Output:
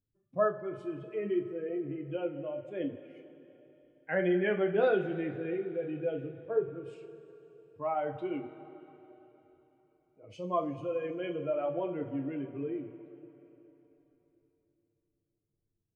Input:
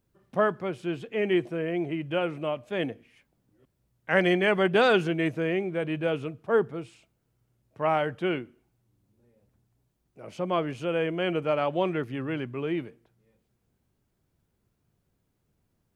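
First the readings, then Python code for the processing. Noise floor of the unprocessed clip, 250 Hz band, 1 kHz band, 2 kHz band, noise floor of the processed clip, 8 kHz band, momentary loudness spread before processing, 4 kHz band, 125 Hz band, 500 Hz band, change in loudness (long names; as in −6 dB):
−75 dBFS, −6.0 dB, −7.5 dB, −10.5 dB, −83 dBFS, can't be measured, 12 LU, −17.0 dB, −8.5 dB, −5.0 dB, −6.0 dB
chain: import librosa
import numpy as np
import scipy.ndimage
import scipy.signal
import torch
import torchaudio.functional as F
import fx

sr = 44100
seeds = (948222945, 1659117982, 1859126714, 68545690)

y = fx.spec_expand(x, sr, power=1.7)
y = fx.noise_reduce_blind(y, sr, reduce_db=8)
y = fx.rev_double_slope(y, sr, seeds[0], early_s=0.27, late_s=3.6, knee_db=-18, drr_db=1.5)
y = y * librosa.db_to_amplitude(-7.0)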